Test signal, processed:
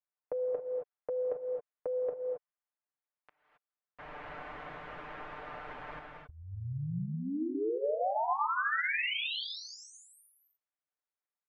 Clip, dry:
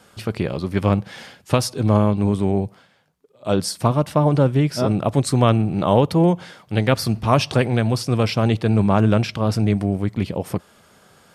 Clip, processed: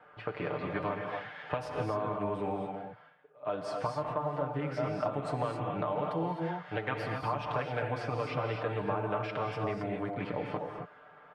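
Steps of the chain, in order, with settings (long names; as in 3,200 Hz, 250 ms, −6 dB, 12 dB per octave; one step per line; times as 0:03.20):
low-pass that shuts in the quiet parts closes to 2,400 Hz, open at −13 dBFS
three-way crossover with the lows and the highs turned down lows −14 dB, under 490 Hz, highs −23 dB, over 2,400 Hz
comb filter 6.7 ms, depth 79%
downward compressor 6 to 1, threshold −29 dBFS
reverb whose tail is shaped and stops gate 290 ms rising, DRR 1.5 dB
level −2.5 dB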